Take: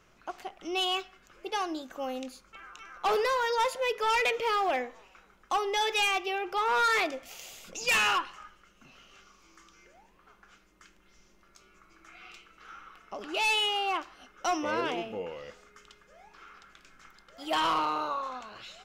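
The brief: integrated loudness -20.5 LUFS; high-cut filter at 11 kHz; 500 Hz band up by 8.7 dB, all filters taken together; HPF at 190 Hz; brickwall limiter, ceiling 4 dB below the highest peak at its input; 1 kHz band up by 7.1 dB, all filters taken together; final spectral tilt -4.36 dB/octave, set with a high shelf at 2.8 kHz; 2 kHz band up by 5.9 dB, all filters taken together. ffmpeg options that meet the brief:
-af "highpass=190,lowpass=11000,equalizer=f=500:t=o:g=9,equalizer=f=1000:t=o:g=4.5,equalizer=f=2000:t=o:g=4,highshelf=f=2800:g=4.5,volume=1.41,alimiter=limit=0.266:level=0:latency=1"

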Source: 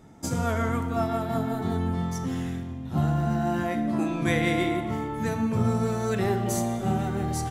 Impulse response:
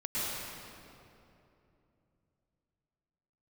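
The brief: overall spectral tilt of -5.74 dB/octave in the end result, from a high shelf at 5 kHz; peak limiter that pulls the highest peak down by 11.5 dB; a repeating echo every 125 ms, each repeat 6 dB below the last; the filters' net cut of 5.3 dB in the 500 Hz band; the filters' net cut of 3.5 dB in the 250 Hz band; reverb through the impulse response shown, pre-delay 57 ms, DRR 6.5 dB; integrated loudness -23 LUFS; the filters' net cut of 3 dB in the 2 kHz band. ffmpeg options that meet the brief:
-filter_complex "[0:a]equalizer=f=250:t=o:g=-3,equalizer=f=500:t=o:g=-6.5,equalizer=f=2000:t=o:g=-4,highshelf=f=5000:g=6,alimiter=level_in=1.12:limit=0.0631:level=0:latency=1,volume=0.891,aecho=1:1:125|250|375|500|625|750:0.501|0.251|0.125|0.0626|0.0313|0.0157,asplit=2[s0][s1];[1:a]atrim=start_sample=2205,adelay=57[s2];[s1][s2]afir=irnorm=-1:irlink=0,volume=0.211[s3];[s0][s3]amix=inputs=2:normalize=0,volume=2.66"

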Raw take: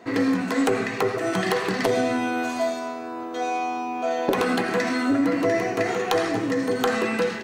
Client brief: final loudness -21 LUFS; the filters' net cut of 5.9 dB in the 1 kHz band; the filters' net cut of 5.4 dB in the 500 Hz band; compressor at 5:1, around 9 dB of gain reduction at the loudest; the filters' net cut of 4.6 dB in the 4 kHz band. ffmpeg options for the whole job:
-af "equalizer=f=500:t=o:g=-5,equalizer=f=1000:t=o:g=-6,equalizer=f=4000:t=o:g=-5.5,acompressor=threshold=0.0316:ratio=5,volume=4.22"

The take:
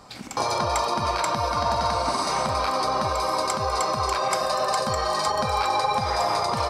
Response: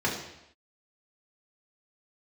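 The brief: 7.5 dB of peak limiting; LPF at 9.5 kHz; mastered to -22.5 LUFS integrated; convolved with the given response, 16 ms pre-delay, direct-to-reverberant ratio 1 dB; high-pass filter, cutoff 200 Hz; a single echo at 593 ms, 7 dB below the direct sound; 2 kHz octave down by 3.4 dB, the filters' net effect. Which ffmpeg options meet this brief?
-filter_complex "[0:a]highpass=200,lowpass=9500,equalizer=f=2000:t=o:g=-4.5,alimiter=limit=0.126:level=0:latency=1,aecho=1:1:593:0.447,asplit=2[s0][s1];[1:a]atrim=start_sample=2205,adelay=16[s2];[s1][s2]afir=irnorm=-1:irlink=0,volume=0.237[s3];[s0][s3]amix=inputs=2:normalize=0,volume=1.19"

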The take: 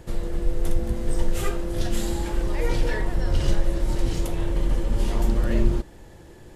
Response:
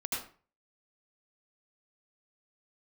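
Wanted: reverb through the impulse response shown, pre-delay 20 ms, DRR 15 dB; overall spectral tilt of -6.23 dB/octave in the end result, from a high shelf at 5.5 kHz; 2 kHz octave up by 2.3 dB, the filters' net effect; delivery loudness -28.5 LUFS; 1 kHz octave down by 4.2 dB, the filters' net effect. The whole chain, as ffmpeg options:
-filter_complex "[0:a]equalizer=f=1000:t=o:g=-6.5,equalizer=f=2000:t=o:g=5.5,highshelf=f=5500:g=-7.5,asplit=2[s0][s1];[1:a]atrim=start_sample=2205,adelay=20[s2];[s1][s2]afir=irnorm=-1:irlink=0,volume=0.106[s3];[s0][s3]amix=inputs=2:normalize=0,volume=0.891"

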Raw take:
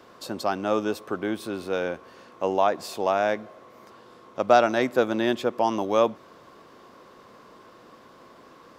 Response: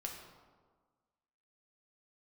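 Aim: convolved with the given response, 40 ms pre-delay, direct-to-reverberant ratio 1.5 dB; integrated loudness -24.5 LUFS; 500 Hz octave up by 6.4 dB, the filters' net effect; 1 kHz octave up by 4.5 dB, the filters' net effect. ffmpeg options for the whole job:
-filter_complex "[0:a]equalizer=f=500:t=o:g=7,equalizer=f=1000:t=o:g=3,asplit=2[s0][s1];[1:a]atrim=start_sample=2205,adelay=40[s2];[s1][s2]afir=irnorm=-1:irlink=0,volume=0.944[s3];[s0][s3]amix=inputs=2:normalize=0,volume=0.447"

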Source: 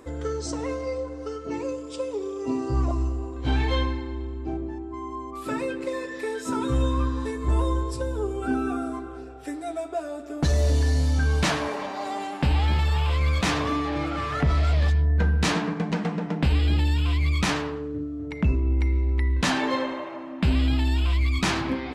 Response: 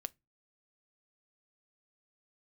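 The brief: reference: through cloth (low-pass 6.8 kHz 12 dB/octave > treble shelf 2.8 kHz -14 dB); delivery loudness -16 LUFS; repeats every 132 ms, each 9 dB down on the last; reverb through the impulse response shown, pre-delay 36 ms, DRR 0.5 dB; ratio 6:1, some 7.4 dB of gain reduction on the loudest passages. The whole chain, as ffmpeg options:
-filter_complex "[0:a]acompressor=threshold=0.0501:ratio=6,aecho=1:1:132|264|396|528:0.355|0.124|0.0435|0.0152,asplit=2[s0][s1];[1:a]atrim=start_sample=2205,adelay=36[s2];[s1][s2]afir=irnorm=-1:irlink=0,volume=1.33[s3];[s0][s3]amix=inputs=2:normalize=0,lowpass=6800,highshelf=f=2800:g=-14,volume=5.31"

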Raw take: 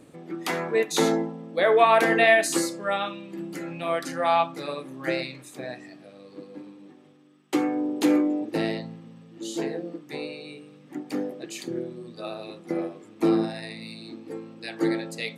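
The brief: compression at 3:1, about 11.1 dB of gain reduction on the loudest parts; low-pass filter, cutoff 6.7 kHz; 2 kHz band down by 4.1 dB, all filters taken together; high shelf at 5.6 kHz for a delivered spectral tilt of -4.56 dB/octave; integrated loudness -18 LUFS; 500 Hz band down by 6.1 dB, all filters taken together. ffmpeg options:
-af "lowpass=6700,equalizer=f=500:t=o:g=-8.5,equalizer=f=2000:t=o:g=-4,highshelf=f=5600:g=-3,acompressor=threshold=0.0224:ratio=3,volume=9.44"

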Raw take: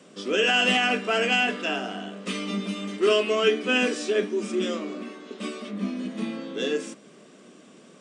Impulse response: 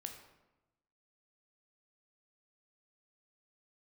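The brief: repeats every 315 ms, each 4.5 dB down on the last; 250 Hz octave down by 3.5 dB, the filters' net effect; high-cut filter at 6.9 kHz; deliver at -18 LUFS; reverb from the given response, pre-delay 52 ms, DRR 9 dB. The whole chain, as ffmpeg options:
-filter_complex "[0:a]lowpass=6900,equalizer=f=250:t=o:g=-4.5,aecho=1:1:315|630|945|1260|1575|1890|2205|2520|2835:0.596|0.357|0.214|0.129|0.0772|0.0463|0.0278|0.0167|0.01,asplit=2[s0][s1];[1:a]atrim=start_sample=2205,adelay=52[s2];[s1][s2]afir=irnorm=-1:irlink=0,volume=0.501[s3];[s0][s3]amix=inputs=2:normalize=0,volume=1.88"

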